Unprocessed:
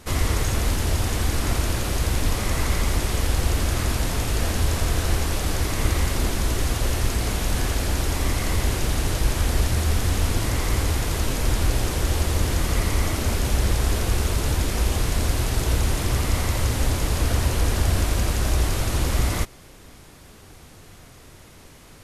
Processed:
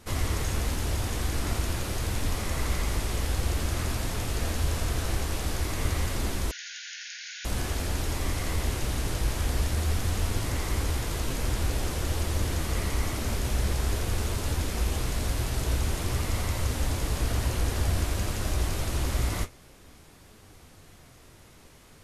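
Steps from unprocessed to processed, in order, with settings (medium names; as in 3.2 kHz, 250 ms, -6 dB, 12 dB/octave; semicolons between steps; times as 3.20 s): flange 0.49 Hz, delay 8.7 ms, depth 9.8 ms, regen -47%; 6.51–7.45 s: brick-wall FIR band-pass 1.4–7 kHz; trim -2 dB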